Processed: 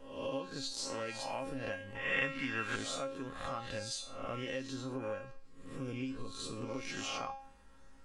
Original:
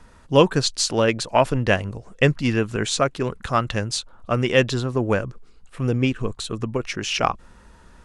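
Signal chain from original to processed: spectral swells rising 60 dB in 0.64 s; resonator 270 Hz, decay 0.37 s, harmonics all, mix 90%; compressor 8:1, threshold -36 dBFS, peak gain reduction 18.5 dB; 1.95–2.76 EQ curve 550 Hz 0 dB, 1200 Hz +15 dB, 5400 Hz +2 dB

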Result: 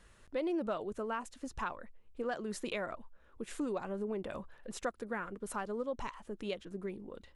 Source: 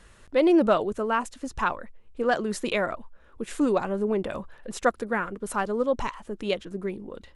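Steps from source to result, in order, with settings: compressor 2.5:1, threshold -27 dBFS, peak gain reduction 8 dB; gain -8 dB

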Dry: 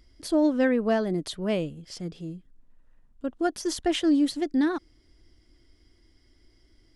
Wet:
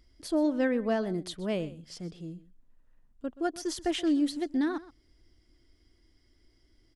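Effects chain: echo 0.126 s -17.5 dB; gain -4.5 dB

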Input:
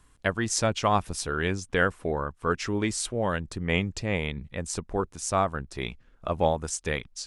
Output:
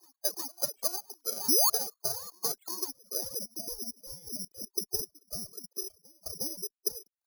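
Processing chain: sine-wave speech; spectral noise reduction 15 dB; compressor 8:1, threshold -37 dBFS, peak gain reduction 19 dB; added harmonics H 3 -15 dB, 6 -43 dB, 7 -14 dB, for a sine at -26 dBFS; low-pass sweep 780 Hz -> 370 Hz, 2.65–3.89; reverse echo 0.361 s -23 dB; painted sound rise, 1.48–1.7, 220–1300 Hz -32 dBFS; careless resampling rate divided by 8×, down filtered, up zero stuff

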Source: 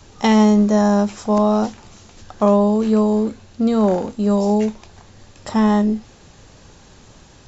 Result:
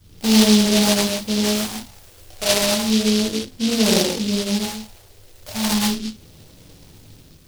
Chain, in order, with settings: phaser stages 4, 0.34 Hz, lowest notch 200–3400 Hz; reverb, pre-delay 3 ms, DRR -7 dB; noise-modulated delay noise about 4000 Hz, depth 0.24 ms; gain -7.5 dB

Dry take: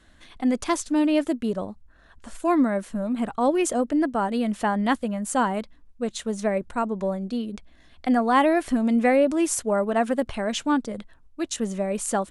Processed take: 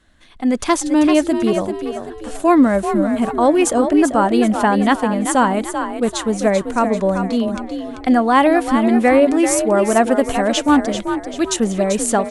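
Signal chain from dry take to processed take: AGC gain up to 11.5 dB; on a send: frequency-shifting echo 0.389 s, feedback 41%, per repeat +45 Hz, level -8 dB; on the sum: gain -1 dB

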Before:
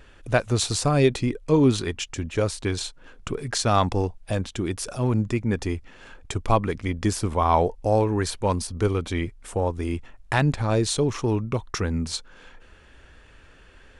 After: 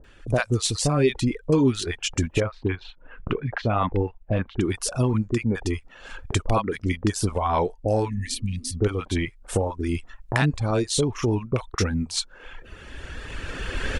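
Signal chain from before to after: recorder AGC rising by 13 dB/s; reverb removal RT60 0.91 s; 2.36–4.57 LPF 2700 Hz 24 dB/oct; 8.07–8.7 spectral repair 230–1700 Hz after; bands offset in time lows, highs 40 ms, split 800 Hz

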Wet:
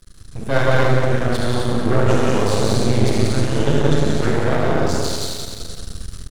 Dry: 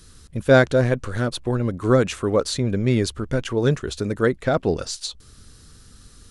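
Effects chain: AGC gain up to 7 dB; feedback echo 0.181 s, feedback 48%, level -5.5 dB; non-linear reverb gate 0.34 s flat, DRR -5.5 dB; in parallel at -1.5 dB: compressor, threshold -24 dBFS, peak gain reduction 19.5 dB; on the sum: low shelf 170 Hz +7 dB; half-wave rectifier; on a send: early reflections 49 ms -11.5 dB, 78 ms -8.5 dB; on the sum: gain -7.5 dB

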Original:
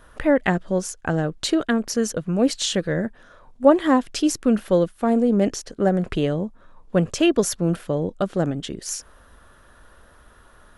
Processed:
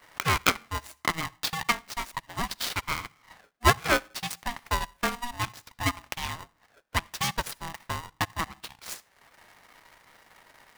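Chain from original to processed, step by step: median filter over 15 samples; HPF 1200 Hz 12 dB/oct; high shelf 6800 Hz +4 dB; notch 7100 Hz, Q 7; digital reverb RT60 0.46 s, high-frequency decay 0.55×, pre-delay 25 ms, DRR 14.5 dB; transient shaper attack +3 dB, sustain -10 dB; polarity switched at an audio rate 480 Hz; gain +4 dB

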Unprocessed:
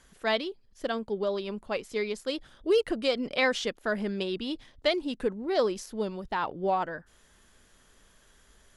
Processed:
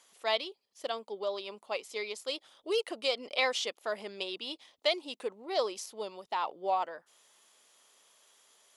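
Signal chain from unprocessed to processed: HPF 670 Hz 12 dB/oct; bell 1600 Hz -11.5 dB 0.53 oct; gain +1 dB

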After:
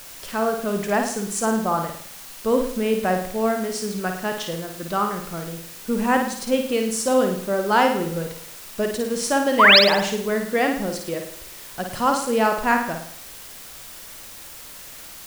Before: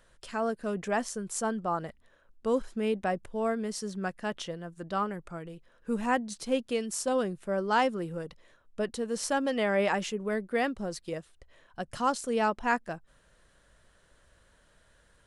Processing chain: painted sound rise, 9.59–9.79, 910–5600 Hz -19 dBFS; in parallel at -10 dB: requantised 6-bit, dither triangular; on the sum: flutter echo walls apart 9.3 m, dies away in 0.59 s; gain +4.5 dB

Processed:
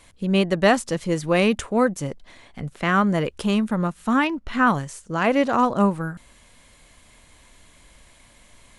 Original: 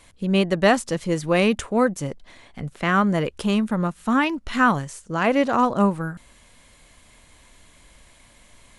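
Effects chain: 4.27–4.67 high shelf 4300 Hz -11.5 dB

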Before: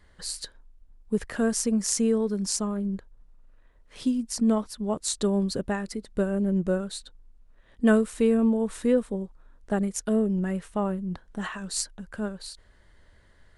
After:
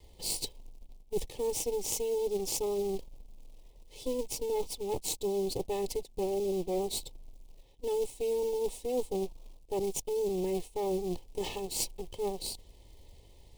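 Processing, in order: minimum comb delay 2.3 ms; reverse; compressor 16:1, threshold -33 dBFS, peak gain reduction 17 dB; reverse; short-mantissa float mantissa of 2-bit; Butterworth band-stop 1500 Hz, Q 0.86; gain +4.5 dB

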